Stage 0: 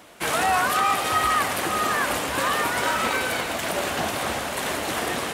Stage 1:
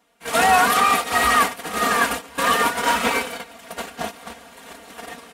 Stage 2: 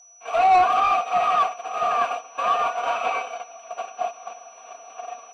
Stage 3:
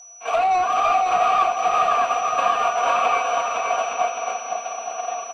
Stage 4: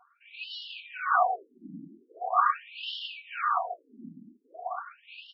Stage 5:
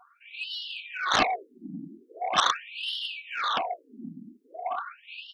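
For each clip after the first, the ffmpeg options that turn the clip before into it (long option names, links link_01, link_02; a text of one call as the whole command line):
ffmpeg -i in.wav -af "agate=range=-21dB:threshold=-23dB:ratio=16:detection=peak,aecho=1:1:4.3:0.91,volume=3dB" out.wav
ffmpeg -i in.wav -filter_complex "[0:a]asplit=3[link_01][link_02][link_03];[link_01]bandpass=frequency=730:width_type=q:width=8,volume=0dB[link_04];[link_02]bandpass=frequency=1090:width_type=q:width=8,volume=-6dB[link_05];[link_03]bandpass=frequency=2440:width_type=q:width=8,volume=-9dB[link_06];[link_04][link_05][link_06]amix=inputs=3:normalize=0,aeval=exprs='val(0)+0.00251*sin(2*PI*5900*n/s)':channel_layout=same,asplit=2[link_07][link_08];[link_08]highpass=frequency=720:poles=1,volume=15dB,asoftclip=type=tanh:threshold=-9.5dB[link_09];[link_07][link_09]amix=inputs=2:normalize=0,lowpass=frequency=3000:poles=1,volume=-6dB" out.wav
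ffmpeg -i in.wav -filter_complex "[0:a]acompressor=threshold=-25dB:ratio=6,asplit=2[link_01][link_02];[link_02]aecho=0:1:510|867|1117|1292|1414:0.631|0.398|0.251|0.158|0.1[link_03];[link_01][link_03]amix=inputs=2:normalize=0,volume=7dB" out.wav
ffmpeg -i in.wav -filter_complex "[0:a]tremolo=f=1.7:d=0.92,acrossover=split=740[link_01][link_02];[link_01]aeval=exprs='abs(val(0))':channel_layout=same[link_03];[link_03][link_02]amix=inputs=2:normalize=0,afftfilt=real='re*between(b*sr/1024,230*pow(4000/230,0.5+0.5*sin(2*PI*0.42*pts/sr))/1.41,230*pow(4000/230,0.5+0.5*sin(2*PI*0.42*pts/sr))*1.41)':imag='im*between(b*sr/1024,230*pow(4000/230,0.5+0.5*sin(2*PI*0.42*pts/sr))/1.41,230*pow(4000/230,0.5+0.5*sin(2*PI*0.42*pts/sr))*1.41)':win_size=1024:overlap=0.75,volume=3dB" out.wav
ffmpeg -i in.wav -af "aeval=exprs='0.299*(cos(1*acos(clip(val(0)/0.299,-1,1)))-cos(1*PI/2))+0.133*(cos(7*acos(clip(val(0)/0.299,-1,1)))-cos(7*PI/2))':channel_layout=same,volume=-1.5dB" out.wav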